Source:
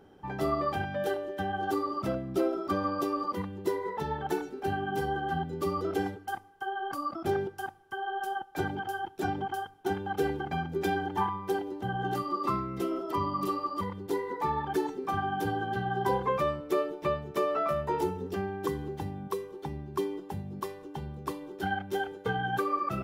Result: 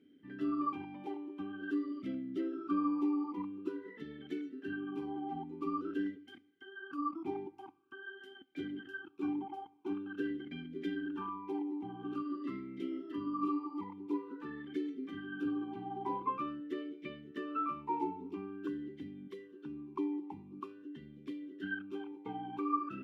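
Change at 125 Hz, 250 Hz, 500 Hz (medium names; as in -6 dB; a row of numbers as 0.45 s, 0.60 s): -16.5 dB, -1.5 dB, -13.0 dB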